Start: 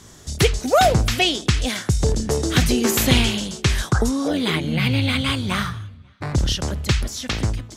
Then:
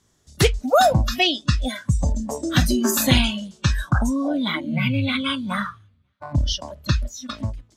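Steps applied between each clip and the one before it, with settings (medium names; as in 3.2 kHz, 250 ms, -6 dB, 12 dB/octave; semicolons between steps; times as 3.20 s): spectral noise reduction 19 dB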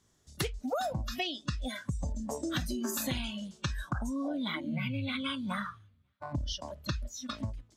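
compression 6:1, threshold -25 dBFS, peak gain reduction 13.5 dB; trim -6 dB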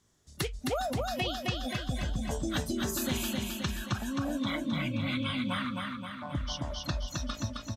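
feedback delay 264 ms, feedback 58%, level -3 dB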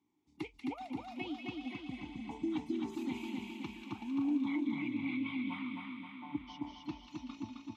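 vowel filter u; feedback echo behind a high-pass 189 ms, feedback 67%, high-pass 1.8 kHz, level -6 dB; trim +5 dB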